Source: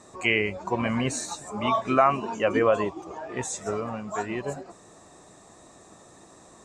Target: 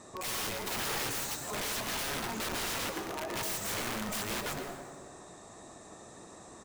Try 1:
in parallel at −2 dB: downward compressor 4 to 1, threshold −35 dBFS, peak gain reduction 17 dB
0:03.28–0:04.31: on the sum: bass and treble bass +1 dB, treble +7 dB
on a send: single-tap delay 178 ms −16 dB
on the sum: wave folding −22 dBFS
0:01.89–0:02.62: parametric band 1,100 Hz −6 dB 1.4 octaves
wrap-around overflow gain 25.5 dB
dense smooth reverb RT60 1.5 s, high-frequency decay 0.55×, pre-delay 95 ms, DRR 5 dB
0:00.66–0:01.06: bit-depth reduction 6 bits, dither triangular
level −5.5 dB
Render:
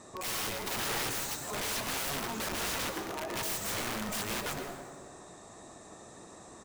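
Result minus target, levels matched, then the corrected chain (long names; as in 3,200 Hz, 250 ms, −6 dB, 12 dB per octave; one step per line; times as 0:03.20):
wave folding: distortion +16 dB
in parallel at −2 dB: downward compressor 4 to 1, threshold −35 dBFS, peak gain reduction 17 dB
0:03.28–0:04.31: on the sum: bass and treble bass +1 dB, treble +7 dB
on a send: single-tap delay 178 ms −16 dB
on the sum: wave folding −11.5 dBFS
0:01.89–0:02.62: parametric band 1,100 Hz −6 dB 1.4 octaves
wrap-around overflow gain 25.5 dB
dense smooth reverb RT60 1.5 s, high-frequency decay 0.55×, pre-delay 95 ms, DRR 5 dB
0:00.66–0:01.06: bit-depth reduction 6 bits, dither triangular
level −5.5 dB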